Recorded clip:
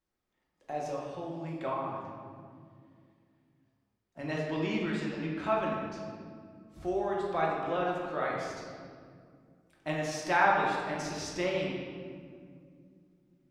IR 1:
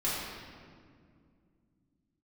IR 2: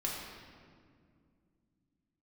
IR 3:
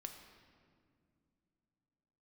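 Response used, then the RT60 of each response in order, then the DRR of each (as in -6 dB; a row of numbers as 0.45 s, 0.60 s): 2; 2.2 s, 2.2 s, no single decay rate; -9.5 dB, -4.0 dB, 4.5 dB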